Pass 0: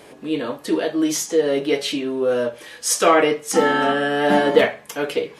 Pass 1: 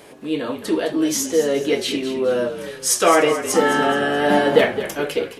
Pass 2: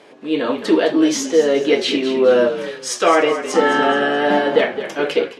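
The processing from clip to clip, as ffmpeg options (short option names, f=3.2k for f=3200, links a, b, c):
-filter_complex "[0:a]highshelf=f=11k:g=5.5,asplit=2[a][b];[b]asplit=4[c][d][e][f];[c]adelay=213,afreqshift=-45,volume=-11dB[g];[d]adelay=426,afreqshift=-90,volume=-19dB[h];[e]adelay=639,afreqshift=-135,volume=-26.9dB[i];[f]adelay=852,afreqshift=-180,volume=-34.9dB[j];[g][h][i][j]amix=inputs=4:normalize=0[k];[a][k]amix=inputs=2:normalize=0"
-af "dynaudnorm=f=130:g=5:m=10dB,highpass=210,lowpass=5k,volume=-1dB"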